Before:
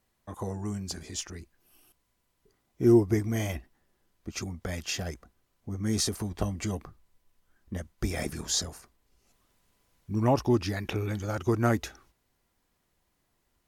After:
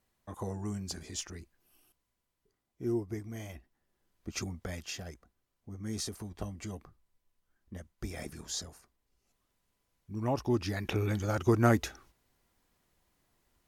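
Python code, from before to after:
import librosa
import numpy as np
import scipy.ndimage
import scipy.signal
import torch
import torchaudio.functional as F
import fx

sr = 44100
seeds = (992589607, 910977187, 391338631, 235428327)

y = fx.gain(x, sr, db=fx.line((1.34, -3.0), (2.92, -12.5), (3.51, -12.5), (4.38, -1.0), (5.02, -9.0), (10.16, -9.0), (11.03, 0.5)))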